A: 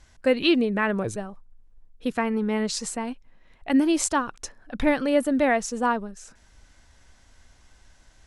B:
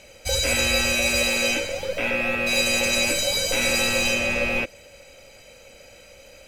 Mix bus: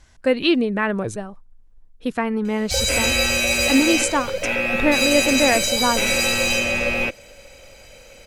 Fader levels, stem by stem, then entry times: +2.5, +2.0 dB; 0.00, 2.45 s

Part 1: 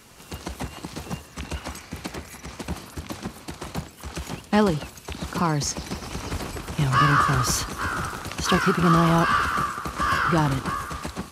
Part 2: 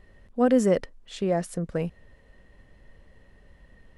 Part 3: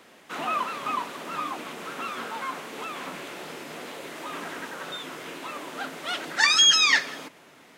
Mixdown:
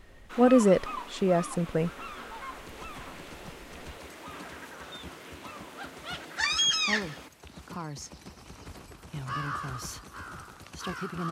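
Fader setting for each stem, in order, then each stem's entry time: -15.0, +0.5, -8.0 dB; 2.35, 0.00, 0.00 s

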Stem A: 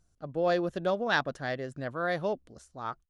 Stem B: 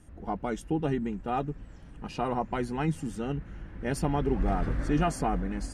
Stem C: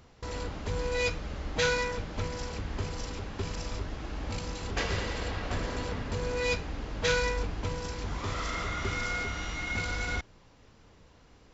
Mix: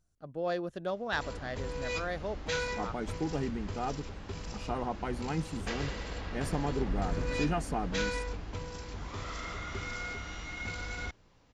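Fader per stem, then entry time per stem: -6.0, -5.0, -6.0 dB; 0.00, 2.50, 0.90 s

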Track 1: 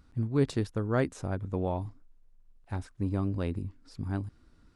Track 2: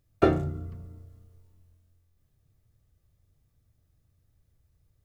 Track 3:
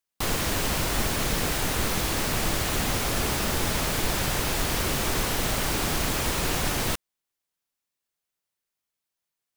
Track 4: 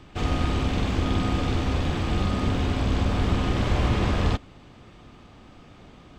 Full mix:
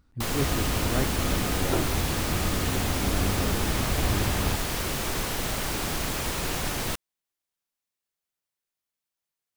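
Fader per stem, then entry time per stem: -3.5, -8.5, -3.0, -5.5 dB; 0.00, 1.50, 0.00, 0.20 s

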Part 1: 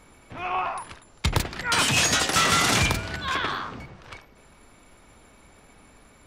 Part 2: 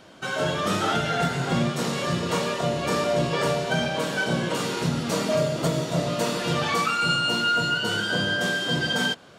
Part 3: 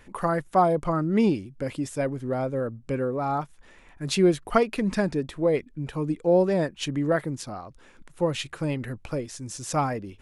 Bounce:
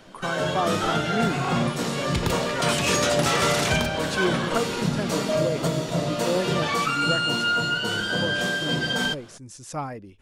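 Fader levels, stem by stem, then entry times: -4.0, -0.5, -6.0 dB; 0.90, 0.00, 0.00 s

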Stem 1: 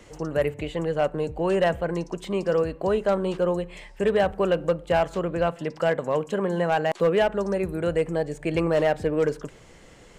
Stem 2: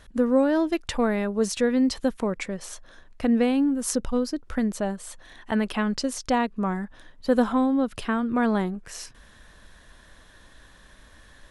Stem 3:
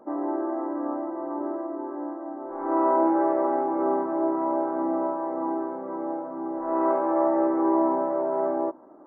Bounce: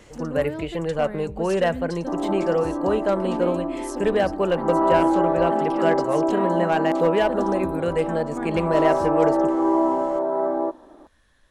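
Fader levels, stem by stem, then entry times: +0.5, -11.0, +2.5 dB; 0.00, 0.00, 2.00 s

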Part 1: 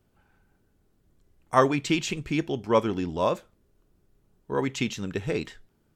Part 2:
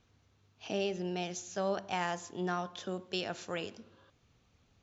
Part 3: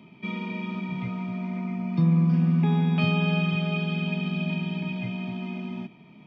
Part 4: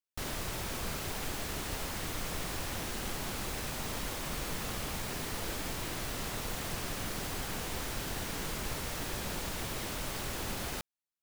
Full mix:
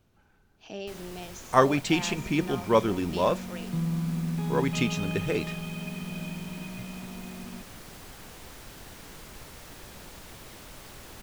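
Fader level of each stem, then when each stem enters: 0.0, -4.5, -8.5, -8.5 dB; 0.00, 0.00, 1.75, 0.70 s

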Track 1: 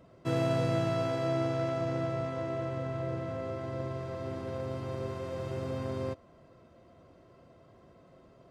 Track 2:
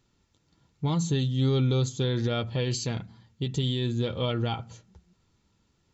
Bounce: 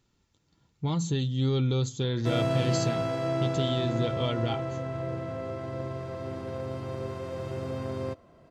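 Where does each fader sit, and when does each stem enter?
+1.5, -2.0 dB; 2.00, 0.00 s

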